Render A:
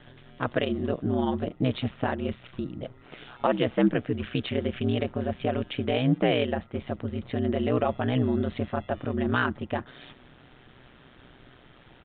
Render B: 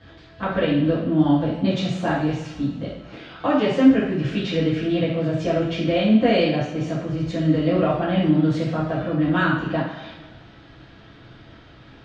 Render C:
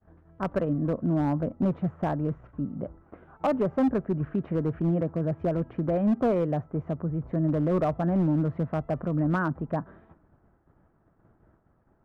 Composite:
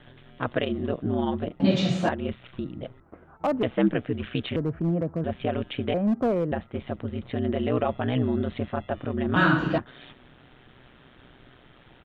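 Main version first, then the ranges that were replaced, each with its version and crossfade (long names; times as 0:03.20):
A
0:01.60–0:02.09: punch in from B
0:03.00–0:03.63: punch in from C
0:04.56–0:05.24: punch in from C
0:05.94–0:06.52: punch in from C
0:09.36–0:09.78: punch in from B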